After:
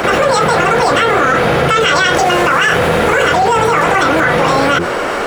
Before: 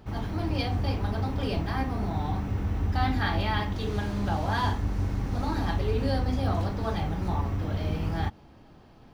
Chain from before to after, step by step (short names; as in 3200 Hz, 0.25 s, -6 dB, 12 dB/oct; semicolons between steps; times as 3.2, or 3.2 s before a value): high shelf 3200 Hz +8 dB; notches 50/100/150/200/250 Hz; speed mistake 45 rpm record played at 78 rpm; three-band isolator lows -20 dB, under 350 Hz, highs -12 dB, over 3100 Hz; maximiser +28 dB; fast leveller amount 70%; gain -4 dB